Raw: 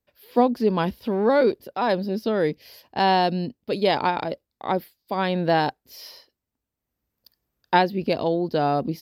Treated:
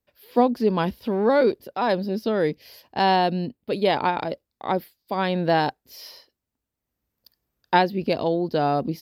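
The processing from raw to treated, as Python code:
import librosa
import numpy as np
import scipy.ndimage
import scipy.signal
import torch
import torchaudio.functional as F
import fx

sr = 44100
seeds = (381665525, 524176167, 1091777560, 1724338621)

y = fx.peak_eq(x, sr, hz=5700.0, db=-10.0, octaves=0.48, at=(3.16, 4.21))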